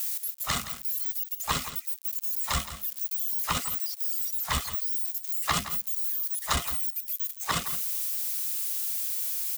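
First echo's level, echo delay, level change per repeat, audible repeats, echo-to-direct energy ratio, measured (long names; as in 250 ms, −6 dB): −12.5 dB, 168 ms, repeats not evenly spaced, 1, −12.5 dB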